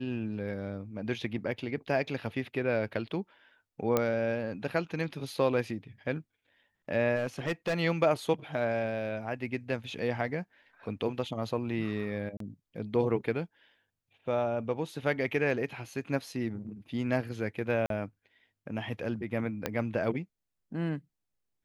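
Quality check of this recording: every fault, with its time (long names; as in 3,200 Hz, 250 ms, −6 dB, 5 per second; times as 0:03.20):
0:03.97: click −12 dBFS
0:07.16–0:07.74: clipping −26 dBFS
0:12.37–0:12.40: drop-out 33 ms
0:17.86–0:17.90: drop-out 42 ms
0:19.66: click −15 dBFS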